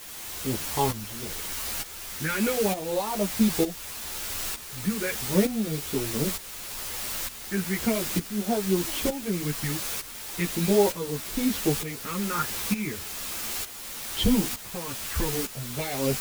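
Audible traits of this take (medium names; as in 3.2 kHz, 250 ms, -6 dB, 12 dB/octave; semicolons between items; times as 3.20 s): phasing stages 4, 0.38 Hz, lowest notch 660–1900 Hz; a quantiser's noise floor 6-bit, dither triangular; tremolo saw up 1.1 Hz, depth 75%; a shimmering, thickened sound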